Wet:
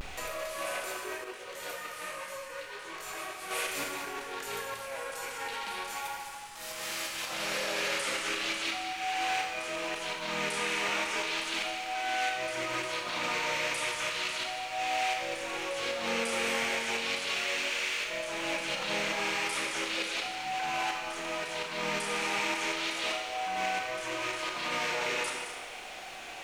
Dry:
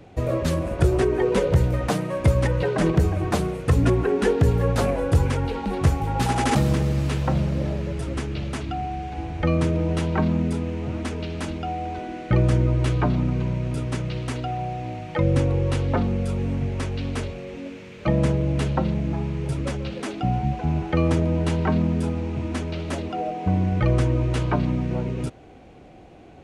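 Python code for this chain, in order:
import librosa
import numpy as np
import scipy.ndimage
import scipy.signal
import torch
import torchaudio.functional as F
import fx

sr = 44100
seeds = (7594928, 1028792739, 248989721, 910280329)

y = scipy.signal.sosfilt(scipy.signal.butter(2, 1400.0, 'highpass', fs=sr, output='sos'), x)
y = fx.high_shelf(y, sr, hz=8100.0, db=8.0)
y = fx.over_compress(y, sr, threshold_db=-47.0, ratio=-1.0)
y = fx.dmg_noise_colour(y, sr, seeds[0], colour='pink', level_db=-71.0)
y = fx.vibrato(y, sr, rate_hz=0.35, depth_cents=34.0)
y = y + 10.0 ** (-10.5 / 20.0) * np.pad(y, (int(217 * sr / 1000.0), 0))[:len(y)]
y = fx.rev_schroeder(y, sr, rt60_s=1.2, comb_ms=27, drr_db=1.5)
y = fx.detune_double(y, sr, cents=37, at=(1.24, 3.51))
y = F.gain(torch.from_numpy(y), 8.0).numpy()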